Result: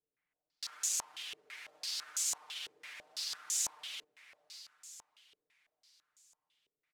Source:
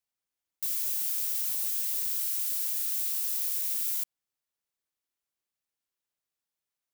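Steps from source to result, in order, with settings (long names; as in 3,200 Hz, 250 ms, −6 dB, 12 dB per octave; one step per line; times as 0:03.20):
comb filter 6.6 ms, depth 78%
on a send: feedback delay with all-pass diffusion 574 ms, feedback 46%, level −14 dB
on the sum: brickwall limiter −20 dBFS, peak gain reduction 4.5 dB
low-pass on a step sequencer 6 Hz 430–6,900 Hz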